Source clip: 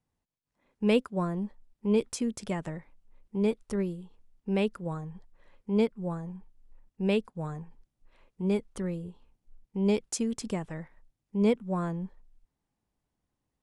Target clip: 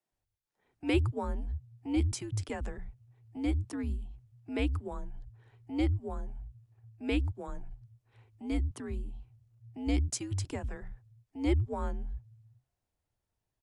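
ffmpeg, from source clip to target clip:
-filter_complex "[0:a]afreqshift=-130,acrossover=split=160[a][b];[a]adelay=110[c];[c][b]amix=inputs=2:normalize=0,volume=-2dB"

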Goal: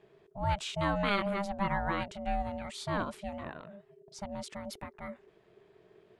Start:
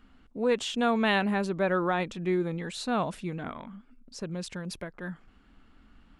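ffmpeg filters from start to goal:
-af "aeval=exprs='val(0)*sin(2*PI*400*n/s)':c=same,volume=-2dB"

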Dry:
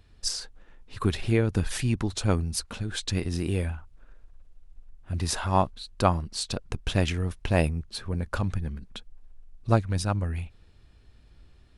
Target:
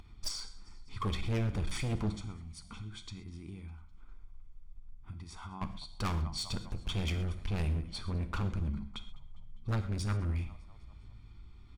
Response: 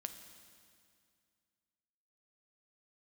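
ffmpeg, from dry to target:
-filter_complex "[0:a]aecho=1:1:0.9:0.86,acompressor=mode=upward:threshold=-40dB:ratio=2.5,aresample=22050,aresample=44100,asplit=3[a][b][c];[a]afade=t=out:st=2.13:d=0.02[d];[b]acompressor=threshold=-36dB:ratio=12,afade=t=in:st=2.13:d=0.02,afade=t=out:st=5.61:d=0.02[e];[c]afade=t=in:st=5.61:d=0.02[f];[d][e][f]amix=inputs=3:normalize=0,highshelf=f=6.9k:g=-10.5,asplit=6[g][h][i][j][k][l];[h]adelay=202,afreqshift=-48,volume=-23dB[m];[i]adelay=404,afreqshift=-96,volume=-27.2dB[n];[j]adelay=606,afreqshift=-144,volume=-31.3dB[o];[k]adelay=808,afreqshift=-192,volume=-35.5dB[p];[l]adelay=1010,afreqshift=-240,volume=-39.6dB[q];[g][m][n][o][p][q]amix=inputs=6:normalize=0,asoftclip=type=hard:threshold=-24.5dB[r];[1:a]atrim=start_sample=2205,atrim=end_sample=6174[s];[r][s]afir=irnorm=-1:irlink=0,volume=-2dB"

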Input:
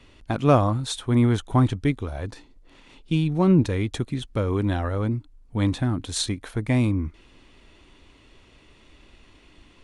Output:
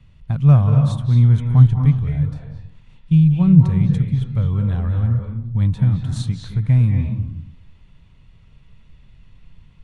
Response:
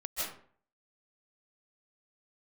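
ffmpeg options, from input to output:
-filter_complex "[0:a]lowshelf=f=220:t=q:w=3:g=12.5,asplit=2[a][b];[1:a]atrim=start_sample=2205,asetrate=31752,aresample=44100,lowpass=4.5k[c];[b][c]afir=irnorm=-1:irlink=0,volume=-6.5dB[d];[a][d]amix=inputs=2:normalize=0,volume=-10.5dB"

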